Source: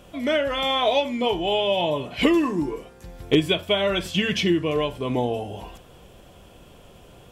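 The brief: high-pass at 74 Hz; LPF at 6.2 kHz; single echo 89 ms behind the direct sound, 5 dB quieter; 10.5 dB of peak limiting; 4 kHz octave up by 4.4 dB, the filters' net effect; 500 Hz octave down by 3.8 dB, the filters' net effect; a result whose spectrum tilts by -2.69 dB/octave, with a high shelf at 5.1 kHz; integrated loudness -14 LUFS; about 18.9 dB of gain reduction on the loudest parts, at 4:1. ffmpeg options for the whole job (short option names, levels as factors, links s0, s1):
-af "highpass=74,lowpass=6200,equalizer=f=500:t=o:g=-5,equalizer=f=4000:t=o:g=9,highshelf=f=5100:g=-6.5,acompressor=threshold=0.0112:ratio=4,alimiter=level_in=2.24:limit=0.0631:level=0:latency=1,volume=0.447,aecho=1:1:89:0.562,volume=20"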